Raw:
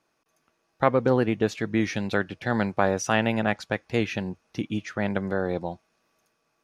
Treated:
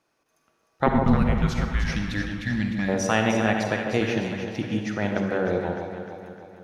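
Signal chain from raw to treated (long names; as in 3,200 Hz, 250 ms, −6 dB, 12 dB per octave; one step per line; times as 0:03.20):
0:00.86–0:01.92: frequency shifter −280 Hz
0:01.95–0:02.89: gain on a spectral selection 340–1,600 Hz −20 dB
delay that swaps between a low-pass and a high-pass 152 ms, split 1,000 Hz, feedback 72%, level −5 dB
on a send at −5 dB: convolution reverb RT60 1.0 s, pre-delay 43 ms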